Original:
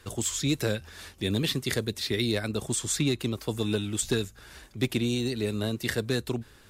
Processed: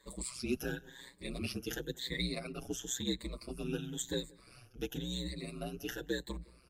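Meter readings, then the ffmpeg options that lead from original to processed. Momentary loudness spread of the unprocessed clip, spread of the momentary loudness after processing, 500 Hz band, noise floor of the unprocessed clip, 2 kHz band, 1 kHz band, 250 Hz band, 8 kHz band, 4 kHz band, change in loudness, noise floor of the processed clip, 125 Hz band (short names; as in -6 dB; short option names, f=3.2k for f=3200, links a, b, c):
7 LU, 8 LU, -10.5 dB, -55 dBFS, -9.5 dB, -8.5 dB, -10.5 dB, -10.5 dB, -9.0 dB, -10.5 dB, -62 dBFS, -13.5 dB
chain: -filter_complex "[0:a]afftfilt=real='re*pow(10,19/40*sin(2*PI*(1*log(max(b,1)*sr/1024/100)/log(2)-(0.96)*(pts-256)/sr)))':imag='im*pow(10,19/40*sin(2*PI*(1*log(max(b,1)*sr/1024/100)/log(2)-(0.96)*(pts-256)/sr)))':win_size=1024:overlap=0.75,aeval=exprs='val(0)*sin(2*PI*63*n/s)':c=same,asplit=2[a][b];[b]adelay=179,lowpass=f=1k:p=1,volume=-22dB,asplit=2[c][d];[d]adelay=179,lowpass=f=1k:p=1,volume=0.52,asplit=2[e][f];[f]adelay=179,lowpass=f=1k:p=1,volume=0.52,asplit=2[g][h];[h]adelay=179,lowpass=f=1k:p=1,volume=0.52[i];[a][c][e][g][i]amix=inputs=5:normalize=0,asplit=2[j][k];[k]adelay=6.6,afreqshift=0.67[l];[j][l]amix=inputs=2:normalize=1,volume=-8dB"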